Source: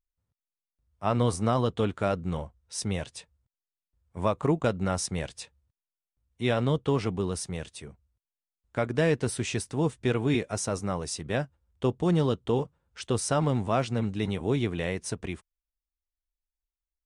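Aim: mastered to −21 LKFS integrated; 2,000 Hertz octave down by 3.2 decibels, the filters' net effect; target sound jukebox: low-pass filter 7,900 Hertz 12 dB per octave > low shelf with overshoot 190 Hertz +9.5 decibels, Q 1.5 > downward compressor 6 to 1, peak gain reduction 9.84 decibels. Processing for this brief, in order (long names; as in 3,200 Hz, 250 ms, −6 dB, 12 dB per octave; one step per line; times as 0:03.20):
low-pass filter 7,900 Hz 12 dB per octave
low shelf with overshoot 190 Hz +9.5 dB, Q 1.5
parametric band 2,000 Hz −4 dB
downward compressor 6 to 1, threshold −23 dBFS
level +8 dB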